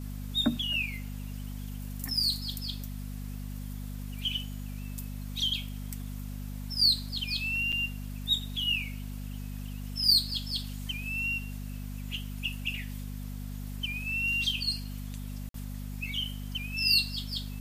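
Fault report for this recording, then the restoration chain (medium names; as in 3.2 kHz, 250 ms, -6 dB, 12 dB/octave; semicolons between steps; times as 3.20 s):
hum 50 Hz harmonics 5 -38 dBFS
7.72–7.73 s: dropout 6.4 ms
15.49–15.54 s: dropout 53 ms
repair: de-hum 50 Hz, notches 5; interpolate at 7.72 s, 6.4 ms; interpolate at 15.49 s, 53 ms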